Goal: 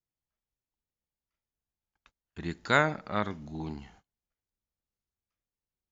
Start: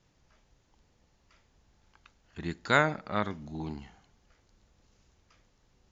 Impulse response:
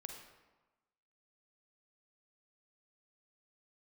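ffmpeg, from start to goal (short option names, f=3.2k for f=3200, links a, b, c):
-af "agate=range=-29dB:threshold=-57dB:ratio=16:detection=peak"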